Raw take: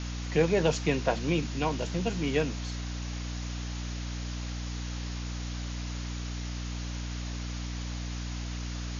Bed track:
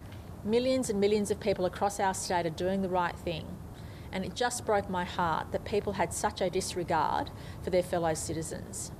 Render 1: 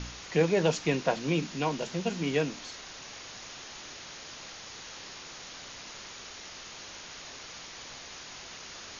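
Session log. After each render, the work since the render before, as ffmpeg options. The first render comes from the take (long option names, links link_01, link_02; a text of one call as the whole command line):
ffmpeg -i in.wav -af "bandreject=frequency=60:width_type=h:width=4,bandreject=frequency=120:width_type=h:width=4,bandreject=frequency=180:width_type=h:width=4,bandreject=frequency=240:width_type=h:width=4,bandreject=frequency=300:width_type=h:width=4" out.wav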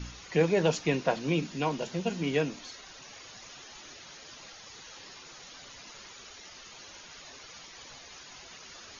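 ffmpeg -i in.wav -af "afftdn=noise_reduction=10:noise_floor=-46" out.wav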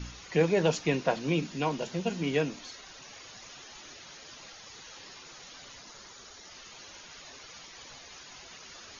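ffmpeg -i in.wav -filter_complex "[0:a]asettb=1/sr,asplit=3[link_01][link_02][link_03];[link_01]atrim=end=5.794[link_04];[link_02]atrim=start=5.79:end=6.5,asetpts=PTS-STARTPTS,afade=type=in:duration=0.004:curve=qsin,afade=type=out:start_time=0.706:duration=0.004:curve=qsin,equalizer=frequency=2600:width=2.1:gain=-6[link_05];[link_03]atrim=start=6.496[link_06];[link_04][link_05]acrossfade=duration=0.004:curve1=hsin:curve2=qsin[link_07];[link_07][link_06]acrossfade=duration=0.004:curve1=qsin:curve2=hsin" out.wav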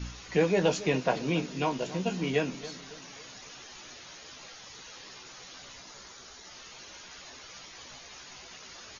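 ffmpeg -i in.wav -filter_complex "[0:a]asplit=2[link_01][link_02];[link_02]adelay=16,volume=-7dB[link_03];[link_01][link_03]amix=inputs=2:normalize=0,asplit=2[link_04][link_05];[link_05]adelay=276,lowpass=frequency=2000:poles=1,volume=-15dB,asplit=2[link_06][link_07];[link_07]adelay=276,lowpass=frequency=2000:poles=1,volume=0.47,asplit=2[link_08][link_09];[link_09]adelay=276,lowpass=frequency=2000:poles=1,volume=0.47,asplit=2[link_10][link_11];[link_11]adelay=276,lowpass=frequency=2000:poles=1,volume=0.47[link_12];[link_04][link_06][link_08][link_10][link_12]amix=inputs=5:normalize=0" out.wav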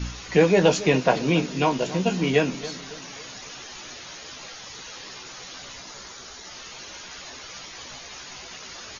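ffmpeg -i in.wav -af "volume=7.5dB" out.wav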